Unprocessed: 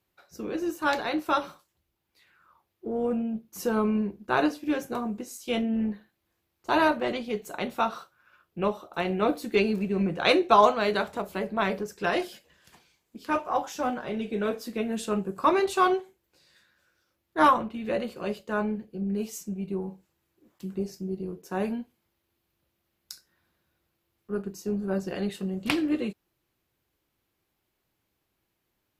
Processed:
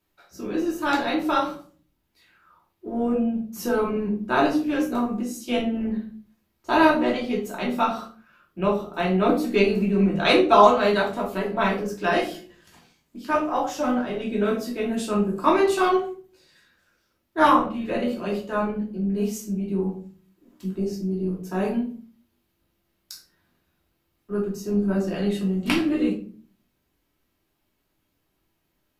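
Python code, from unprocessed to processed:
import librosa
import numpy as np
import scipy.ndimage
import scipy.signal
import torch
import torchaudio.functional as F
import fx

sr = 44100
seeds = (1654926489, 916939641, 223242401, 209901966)

y = fx.room_shoebox(x, sr, seeds[0], volume_m3=310.0, walls='furnished', distance_m=2.8)
y = F.gain(torch.from_numpy(y), -1.0).numpy()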